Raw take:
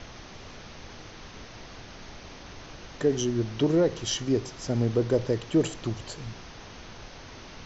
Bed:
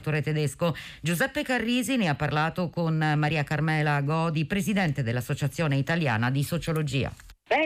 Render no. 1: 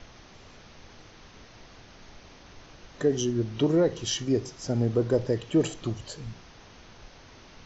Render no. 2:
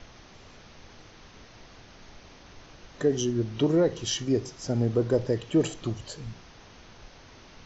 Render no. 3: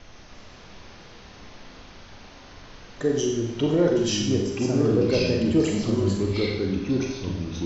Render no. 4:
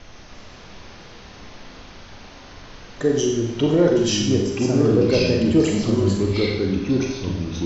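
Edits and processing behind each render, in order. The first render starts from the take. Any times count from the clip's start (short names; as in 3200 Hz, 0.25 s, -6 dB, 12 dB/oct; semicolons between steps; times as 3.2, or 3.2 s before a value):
noise print and reduce 6 dB
nothing audible
echoes that change speed 0.298 s, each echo -3 st, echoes 2; Schroeder reverb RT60 0.9 s, combs from 31 ms, DRR 1 dB
gain +4 dB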